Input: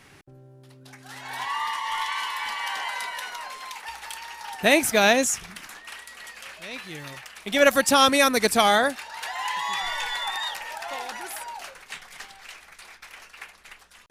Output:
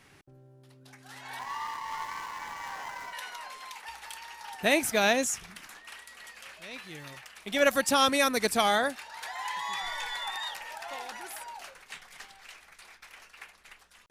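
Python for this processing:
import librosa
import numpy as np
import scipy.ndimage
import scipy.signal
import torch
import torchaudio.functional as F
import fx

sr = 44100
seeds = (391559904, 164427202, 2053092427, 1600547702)

y = fx.median_filter(x, sr, points=15, at=(1.39, 3.13))
y = fx.notch(y, sr, hz=2800.0, q=11.0, at=(9.16, 10.18))
y = y * librosa.db_to_amplitude(-6.0)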